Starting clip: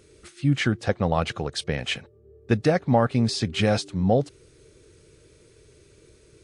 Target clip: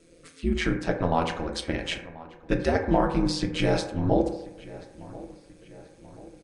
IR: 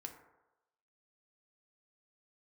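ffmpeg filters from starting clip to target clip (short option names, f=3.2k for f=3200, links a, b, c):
-filter_complex "[0:a]aeval=exprs='val(0)*sin(2*PI*83*n/s)':c=same,asplit=2[a][b];[b]adelay=1035,lowpass=f=3k:p=1,volume=-19dB,asplit=2[c][d];[d]adelay=1035,lowpass=f=3k:p=1,volume=0.52,asplit=2[e][f];[f]adelay=1035,lowpass=f=3k:p=1,volume=0.52,asplit=2[g][h];[h]adelay=1035,lowpass=f=3k:p=1,volume=0.52[i];[a][c][e][g][i]amix=inputs=5:normalize=0[j];[1:a]atrim=start_sample=2205,asetrate=48510,aresample=44100[k];[j][k]afir=irnorm=-1:irlink=0,volume=5.5dB"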